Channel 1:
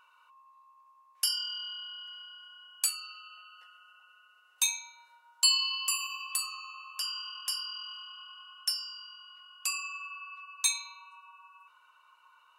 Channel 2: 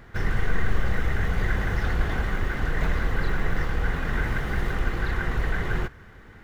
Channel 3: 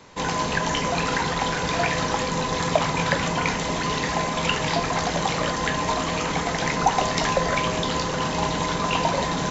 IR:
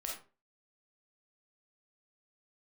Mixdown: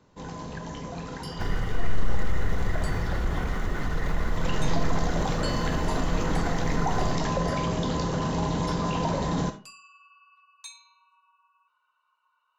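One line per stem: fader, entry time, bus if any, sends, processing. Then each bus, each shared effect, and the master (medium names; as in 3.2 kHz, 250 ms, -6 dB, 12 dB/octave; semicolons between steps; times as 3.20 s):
-11.0 dB, 0.00 s, no bus, send -16.5 dB, treble shelf 9.5 kHz -10.5 dB; peaking EQ 13 kHz -9.5 dB 1 oct
-3.0 dB, 1.25 s, bus A, send -8 dB, band-stop 1.6 kHz, Q 9.7
4.24 s -20 dB -> 4.53 s -8.5 dB, 0.00 s, bus A, send -8 dB, bass shelf 490 Hz +11.5 dB
bus A: 0.0 dB, peak limiter -21.5 dBFS, peak gain reduction 11.5 dB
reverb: on, RT60 0.35 s, pre-delay 5 ms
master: peaking EQ 2.4 kHz -4.5 dB 0.66 oct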